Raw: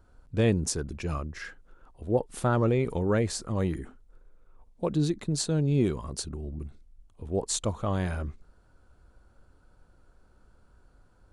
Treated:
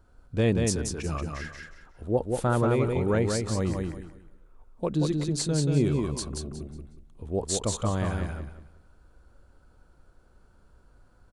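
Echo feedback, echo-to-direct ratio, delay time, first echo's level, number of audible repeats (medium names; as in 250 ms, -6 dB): 26%, -3.5 dB, 182 ms, -4.0 dB, 3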